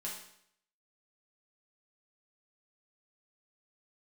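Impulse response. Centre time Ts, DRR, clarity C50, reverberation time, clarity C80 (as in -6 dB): 39 ms, -5.0 dB, 4.0 dB, 0.70 s, 7.5 dB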